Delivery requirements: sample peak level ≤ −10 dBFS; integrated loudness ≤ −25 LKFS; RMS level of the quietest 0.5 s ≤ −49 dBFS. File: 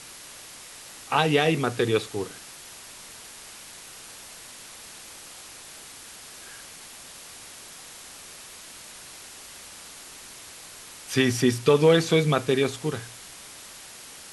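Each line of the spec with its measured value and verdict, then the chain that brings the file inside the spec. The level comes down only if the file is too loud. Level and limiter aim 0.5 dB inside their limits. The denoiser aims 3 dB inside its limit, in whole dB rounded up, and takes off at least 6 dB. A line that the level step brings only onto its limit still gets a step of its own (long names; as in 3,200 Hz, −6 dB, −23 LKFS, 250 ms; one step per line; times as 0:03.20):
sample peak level −7.0 dBFS: out of spec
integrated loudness −23.0 LKFS: out of spec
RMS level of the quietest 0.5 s −44 dBFS: out of spec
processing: broadband denoise 6 dB, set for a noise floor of −44 dBFS
level −2.5 dB
brickwall limiter −10.5 dBFS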